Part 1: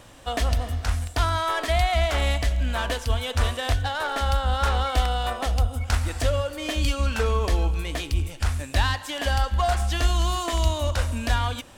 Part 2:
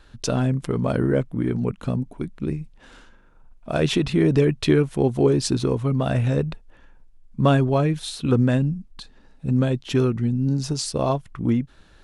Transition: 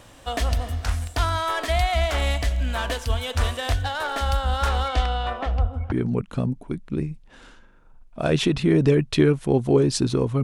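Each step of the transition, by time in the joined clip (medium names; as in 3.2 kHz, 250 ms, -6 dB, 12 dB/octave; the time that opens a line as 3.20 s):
part 1
4.88–5.92 s: low-pass 6.5 kHz -> 1.1 kHz
5.92 s: go over to part 2 from 1.42 s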